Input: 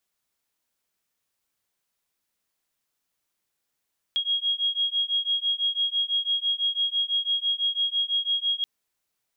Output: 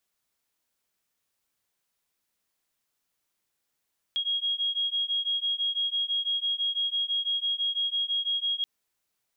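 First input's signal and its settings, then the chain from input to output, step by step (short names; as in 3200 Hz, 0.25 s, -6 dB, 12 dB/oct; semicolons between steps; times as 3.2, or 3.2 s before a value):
beating tones 3280 Hz, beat 6 Hz, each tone -26 dBFS 4.48 s
limiter -24 dBFS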